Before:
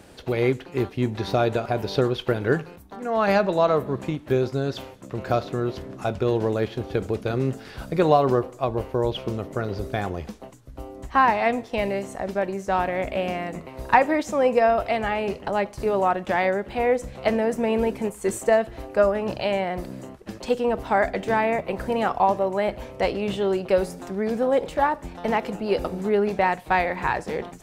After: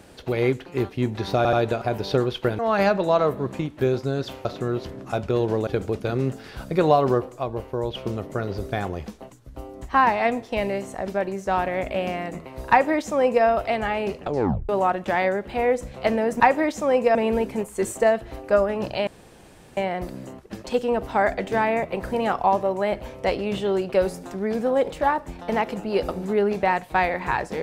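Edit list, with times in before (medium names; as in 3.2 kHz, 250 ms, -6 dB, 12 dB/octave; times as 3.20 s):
1.37 s: stutter 0.08 s, 3 plays
2.43–3.08 s: delete
4.94–5.37 s: delete
6.59–6.88 s: delete
8.63–9.16 s: gain -3.5 dB
13.91–14.66 s: copy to 17.61 s
15.41 s: tape stop 0.49 s
19.53 s: insert room tone 0.70 s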